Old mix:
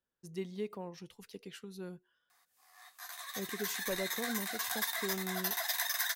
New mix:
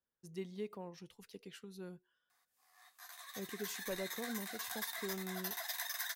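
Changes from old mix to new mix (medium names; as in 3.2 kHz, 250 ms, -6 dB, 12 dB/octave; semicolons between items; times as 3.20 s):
speech -4.0 dB; background -7.0 dB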